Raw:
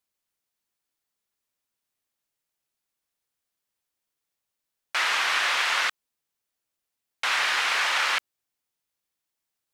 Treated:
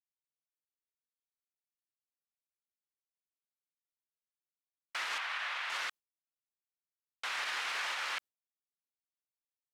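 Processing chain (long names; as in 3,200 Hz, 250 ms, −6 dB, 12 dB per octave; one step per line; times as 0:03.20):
noise gate with hold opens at −18 dBFS
brickwall limiter −20 dBFS, peak gain reduction 8.5 dB
0:05.18–0:05.70: three-way crossover with the lows and the highs turned down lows −19 dB, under 550 Hz, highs −12 dB, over 3,900 Hz
level −7.5 dB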